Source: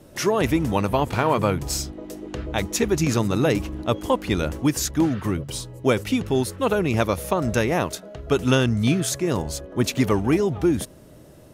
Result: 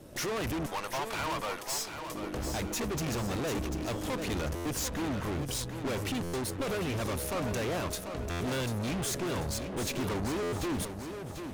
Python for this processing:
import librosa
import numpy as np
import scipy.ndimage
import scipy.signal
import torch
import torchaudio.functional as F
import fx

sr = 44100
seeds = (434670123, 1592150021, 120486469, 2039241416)

p1 = fx.highpass(x, sr, hz=680.0, slope=12, at=(0.66, 2.15))
p2 = fx.tube_stage(p1, sr, drive_db=34.0, bias=0.8)
p3 = p2 + fx.echo_feedback(p2, sr, ms=742, feedback_pct=42, wet_db=-8.0, dry=0)
p4 = fx.buffer_glitch(p3, sr, at_s=(4.55, 6.23, 8.3, 10.42), block=512, repeats=8)
y = F.gain(torch.from_numpy(p4), 2.5).numpy()